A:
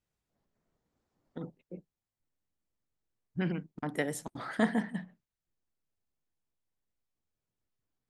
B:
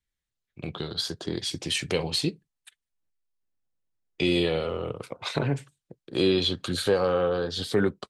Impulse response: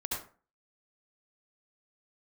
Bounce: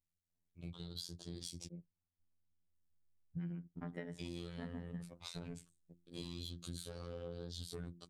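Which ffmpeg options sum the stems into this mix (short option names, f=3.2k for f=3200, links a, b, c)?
-filter_complex "[0:a]lowpass=2.1k,volume=-5.5dB,afade=t=in:st=1.66:d=0.26:silence=0.266073[a];[1:a]equalizer=f=1.7k:t=o:w=0.55:g=-4.5,bandreject=f=60:t=h:w=6,bandreject=f=120:t=h:w=6,bandreject=f=180:t=h:w=6,bandreject=f=240:t=h:w=6,bandreject=f=300:t=h:w=6,bandreject=f=360:t=h:w=6,asoftclip=type=tanh:threshold=-19dB,volume=-16.5dB,asplit=3[b][c][d];[b]atrim=end=1.67,asetpts=PTS-STARTPTS,afade=t=out:st=1.666:d=0.004:c=hsin[e];[c]atrim=start=1.67:end=2.75,asetpts=PTS-STARTPTS,volume=0[f];[d]atrim=start=2.75,asetpts=PTS-STARTPTS,afade=t=in:d=0.004:c=hsin[g];[e][f][g]concat=n=3:v=0:a=1,asplit=2[h][i];[i]apad=whole_len=357142[j];[a][j]sidechaincompress=threshold=-47dB:ratio=8:attack=7.6:release=366[k];[k][h]amix=inputs=2:normalize=0,afftfilt=real='hypot(re,im)*cos(PI*b)':imag='0':win_size=2048:overlap=0.75,bass=f=250:g=13,treble=f=4k:g=14,acompressor=threshold=-41dB:ratio=6"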